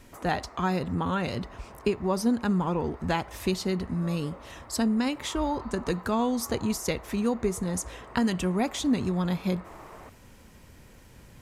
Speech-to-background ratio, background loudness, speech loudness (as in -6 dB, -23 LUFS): 18.5 dB, -47.5 LUFS, -29.0 LUFS